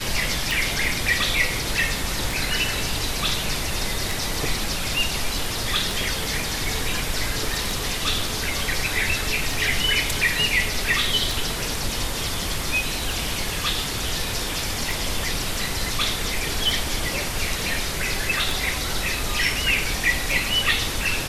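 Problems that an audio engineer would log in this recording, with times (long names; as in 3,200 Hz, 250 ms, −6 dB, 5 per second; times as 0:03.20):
scratch tick 33 1/3 rpm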